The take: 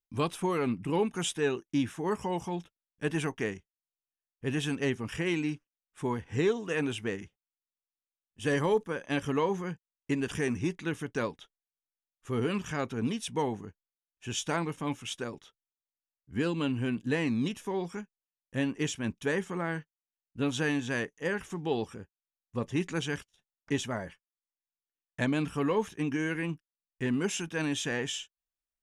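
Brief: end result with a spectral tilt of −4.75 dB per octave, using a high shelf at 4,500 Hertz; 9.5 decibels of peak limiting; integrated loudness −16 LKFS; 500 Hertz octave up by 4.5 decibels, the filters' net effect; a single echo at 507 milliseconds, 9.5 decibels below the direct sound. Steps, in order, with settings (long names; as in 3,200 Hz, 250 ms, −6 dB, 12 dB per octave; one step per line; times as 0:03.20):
parametric band 500 Hz +5.5 dB
high-shelf EQ 4,500 Hz +4.5 dB
brickwall limiter −22.5 dBFS
single-tap delay 507 ms −9.5 dB
level +17.5 dB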